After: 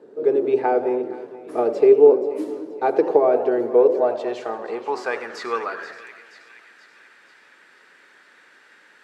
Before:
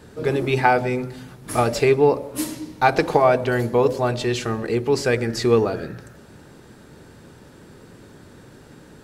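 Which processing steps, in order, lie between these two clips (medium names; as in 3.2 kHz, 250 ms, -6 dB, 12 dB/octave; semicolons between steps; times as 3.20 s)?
high-pass 250 Hz 12 dB/octave; treble shelf 3.8 kHz +6.5 dB; two-band feedback delay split 1.3 kHz, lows 231 ms, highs 479 ms, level -15 dB; band-pass sweep 420 Hz -> 1.9 kHz, 3.63–6.11 s; modulated delay 85 ms, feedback 58%, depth 209 cents, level -15 dB; trim +5.5 dB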